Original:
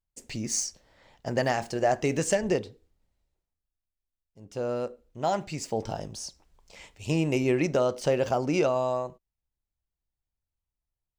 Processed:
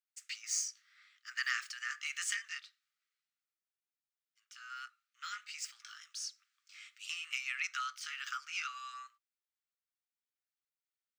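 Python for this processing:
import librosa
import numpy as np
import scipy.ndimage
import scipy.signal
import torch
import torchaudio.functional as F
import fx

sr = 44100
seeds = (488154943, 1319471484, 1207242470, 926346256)

y = fx.pitch_ramps(x, sr, semitones=1.0, every_ms=1224)
y = scipy.signal.sosfilt(scipy.signal.cheby1(8, 1.0, 1200.0, 'highpass', fs=sr, output='sos'), y)
y = fx.peak_eq(y, sr, hz=11000.0, db=-8.5, octaves=1.3)
y = F.gain(torch.from_numpy(y), 1.0).numpy()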